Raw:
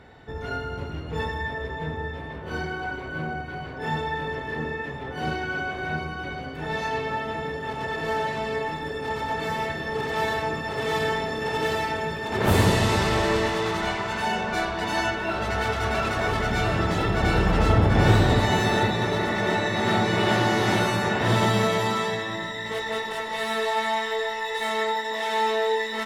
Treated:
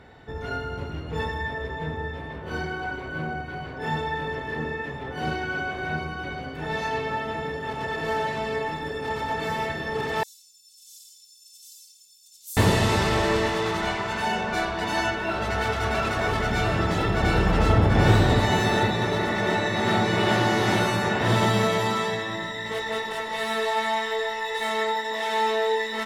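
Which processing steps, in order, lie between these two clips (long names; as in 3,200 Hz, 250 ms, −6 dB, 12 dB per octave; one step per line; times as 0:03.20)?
0:10.23–0:12.57: inverse Chebyshev high-pass filter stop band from 1,900 Hz, stop band 60 dB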